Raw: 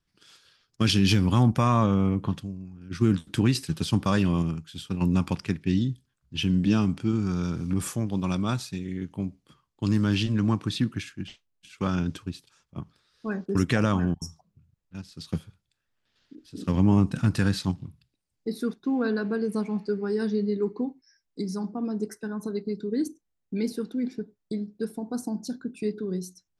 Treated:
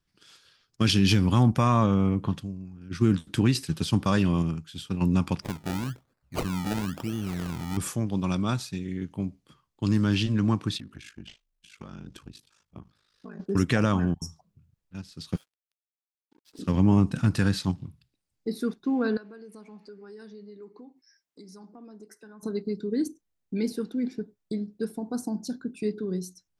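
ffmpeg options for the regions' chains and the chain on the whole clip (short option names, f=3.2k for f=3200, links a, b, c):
-filter_complex "[0:a]asettb=1/sr,asplit=3[a][b][c];[a]atrim=end=5.424[d];[b]atrim=start=5.42:end=7.77,asetpts=PTS-STARTPTS,afade=t=in:d=0.004:c=qsin,afade=t=out:st=2.346:d=0.004:c=qsin,equalizer=f=3.3k:t=o:w=1:g=12,acompressor=threshold=-31dB:ratio=2:attack=3.2:release=140:knee=1:detection=peak,acrusher=samples=28:mix=1:aa=0.000001:lfo=1:lforange=28:lforate=1[e];[c]atrim=start=7.766[f];[d][e]acrossfade=d=0.004:c1=hsin:c2=qsin[g];[g][f]acrossfade=d=0.004:c1=qsin:c2=hsin,asettb=1/sr,asplit=3[h][i][j];[h]atrim=end=10.774[k];[i]atrim=start=10.77:end=13.4,asetpts=PTS-STARTPTS,afade=t=in:d=0.004:c=qsin,afade=t=out:st=2.626:d=0.004:c=qsin,acompressor=threshold=-35dB:ratio=10:attack=3.2:release=140:knee=1:detection=peak,aeval=exprs='val(0)*sin(2*PI*26*n/s)':c=same[l];[j]atrim=start=13.396[m];[k][l]acrossfade=d=0.004:c1=hsin:c2=qsin[n];[n][m]acrossfade=d=0.004:c1=qsin:c2=hsin,asettb=1/sr,asplit=3[o][p][q];[o]atrim=end=15.364[r];[p]atrim=start=15.36:end=16.59,asetpts=PTS-STARTPTS,afade=t=in:d=0.004:c=qsin,afade=t=out:st=1.226:d=0.004:c=qsin,highpass=550,aeval=exprs='sgn(val(0))*max(abs(val(0))-0.00126,0)':c=same[s];[q]atrim=start=16.586[t];[r][s]acrossfade=d=0.004:c1=hsin:c2=qsin[u];[u][t]acrossfade=d=0.004:c1=qsin:c2=hsin,asettb=1/sr,asplit=3[v][w][x];[v]atrim=end=19.174[y];[w]atrim=start=19.17:end=22.43,asetpts=PTS-STARTPTS,afade=t=in:d=0.004:c=qsin,afade=t=out:st=3.256:d=0.004:c=qsin,highpass=f=370:p=1,acompressor=threshold=-50dB:ratio=2.5:attack=3.2:release=140:knee=1:detection=peak[z];[x]atrim=start=22.426[aa];[y][z]acrossfade=d=0.004:c1=hsin:c2=qsin[ab];[ab][aa]acrossfade=d=0.004:c1=qsin:c2=hsin"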